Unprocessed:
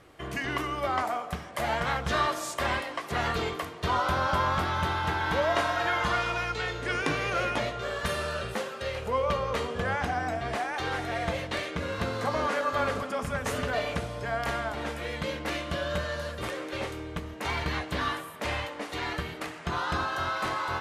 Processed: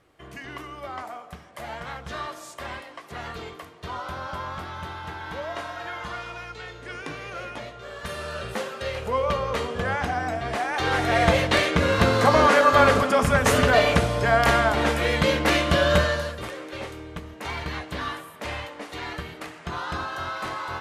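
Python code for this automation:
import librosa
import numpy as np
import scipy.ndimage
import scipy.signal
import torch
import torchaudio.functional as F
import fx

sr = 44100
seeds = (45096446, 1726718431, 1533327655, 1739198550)

y = fx.gain(x, sr, db=fx.line((7.81, -7.0), (8.63, 3.0), (10.52, 3.0), (11.22, 11.5), (16.01, 11.5), (16.48, -1.0)))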